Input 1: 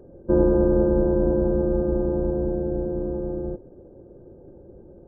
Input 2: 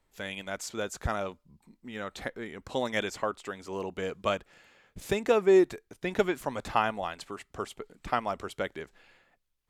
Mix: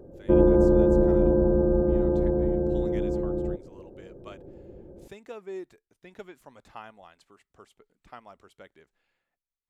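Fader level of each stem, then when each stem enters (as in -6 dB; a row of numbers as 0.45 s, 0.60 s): 0.0 dB, -17.0 dB; 0.00 s, 0.00 s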